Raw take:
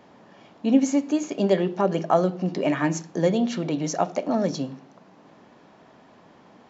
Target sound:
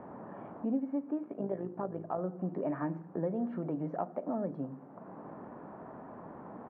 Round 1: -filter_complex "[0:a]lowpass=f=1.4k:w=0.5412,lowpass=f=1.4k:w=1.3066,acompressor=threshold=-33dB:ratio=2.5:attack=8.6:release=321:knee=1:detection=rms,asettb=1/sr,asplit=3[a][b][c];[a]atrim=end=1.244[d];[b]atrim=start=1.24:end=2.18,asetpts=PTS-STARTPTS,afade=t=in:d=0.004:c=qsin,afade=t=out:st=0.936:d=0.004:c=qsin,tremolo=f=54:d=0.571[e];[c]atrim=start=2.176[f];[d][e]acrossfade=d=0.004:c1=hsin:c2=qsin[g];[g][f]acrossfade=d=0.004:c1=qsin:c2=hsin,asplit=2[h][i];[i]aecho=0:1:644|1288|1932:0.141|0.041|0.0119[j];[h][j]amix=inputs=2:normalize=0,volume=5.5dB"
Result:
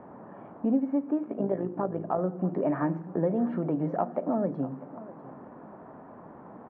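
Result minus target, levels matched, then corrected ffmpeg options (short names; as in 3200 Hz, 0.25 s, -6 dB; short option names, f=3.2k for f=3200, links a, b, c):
compressor: peak gain reduction -7 dB; echo-to-direct +8 dB
-filter_complex "[0:a]lowpass=f=1.4k:w=0.5412,lowpass=f=1.4k:w=1.3066,acompressor=threshold=-44.5dB:ratio=2.5:attack=8.6:release=321:knee=1:detection=rms,asettb=1/sr,asplit=3[a][b][c];[a]atrim=end=1.244[d];[b]atrim=start=1.24:end=2.18,asetpts=PTS-STARTPTS,afade=t=in:d=0.004:c=qsin,afade=t=out:st=0.936:d=0.004:c=qsin,tremolo=f=54:d=0.571[e];[c]atrim=start=2.176[f];[d][e]acrossfade=d=0.004:c1=hsin:c2=qsin[g];[g][f]acrossfade=d=0.004:c1=qsin:c2=hsin,asplit=2[h][i];[i]aecho=0:1:644|1288:0.0562|0.0163[j];[h][j]amix=inputs=2:normalize=0,volume=5.5dB"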